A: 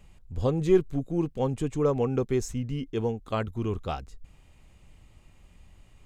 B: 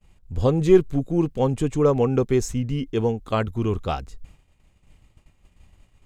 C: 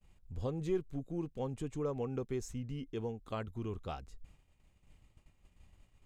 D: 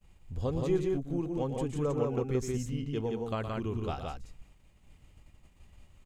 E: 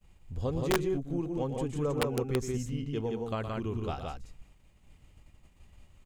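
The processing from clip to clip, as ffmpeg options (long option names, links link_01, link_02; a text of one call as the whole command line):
ffmpeg -i in.wav -af "agate=range=-33dB:threshold=-45dB:ratio=3:detection=peak,volume=6dB" out.wav
ffmpeg -i in.wav -af "acompressor=threshold=-41dB:ratio=1.5,volume=-8.5dB" out.wav
ffmpeg -i in.wav -af "aecho=1:1:116.6|172:0.355|0.708,volume=4.5dB" out.wav
ffmpeg -i in.wav -af "aeval=exprs='(mod(9.44*val(0)+1,2)-1)/9.44':channel_layout=same" out.wav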